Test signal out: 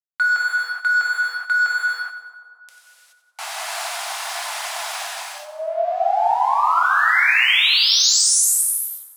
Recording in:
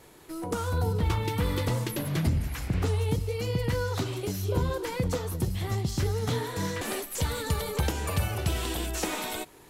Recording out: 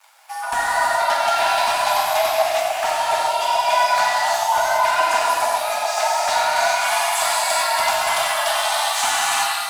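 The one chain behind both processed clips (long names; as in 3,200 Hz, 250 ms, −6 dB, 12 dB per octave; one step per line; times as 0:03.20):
high-pass filter 170 Hz 24 dB per octave
reverb reduction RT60 1 s
low-pass filter 11,000 Hz 24 dB per octave
dead-zone distortion −54 dBFS
frequency shifter +490 Hz
hard clipping −27 dBFS
echo with a time of its own for lows and highs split 1,200 Hz, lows 254 ms, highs 92 ms, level −12 dB
reverb whose tail is shaped and stops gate 450 ms flat, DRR −6.5 dB
level +9 dB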